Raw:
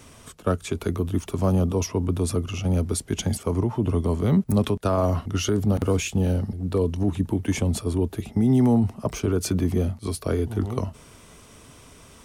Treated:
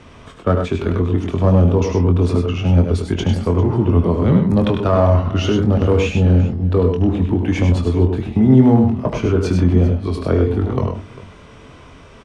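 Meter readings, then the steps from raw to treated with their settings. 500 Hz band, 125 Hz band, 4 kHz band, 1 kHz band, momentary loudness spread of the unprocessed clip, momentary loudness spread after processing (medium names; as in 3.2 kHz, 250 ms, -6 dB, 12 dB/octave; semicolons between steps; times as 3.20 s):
+8.0 dB, +9.0 dB, +4.0 dB, +8.0 dB, 6 LU, 6 LU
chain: low-pass 3.1 kHz 12 dB/octave; in parallel at -7.5 dB: one-sided clip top -18.5 dBFS, bottom -14.5 dBFS; on the sum: doubling 23 ms -7 dB; multi-tap echo 75/100/127/398 ms -11/-6/-16.5/-18.5 dB; trim +3 dB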